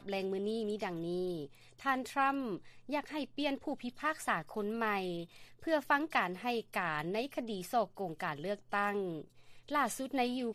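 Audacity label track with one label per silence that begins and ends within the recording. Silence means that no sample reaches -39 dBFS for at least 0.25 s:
1.450000	1.850000	silence
2.570000	2.890000	silence
5.230000	5.670000	silence
9.210000	9.690000	silence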